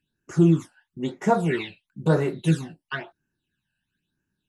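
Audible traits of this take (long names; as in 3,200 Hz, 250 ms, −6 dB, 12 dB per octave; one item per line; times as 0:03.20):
phaser sweep stages 12, 1 Hz, lowest notch 360–3,600 Hz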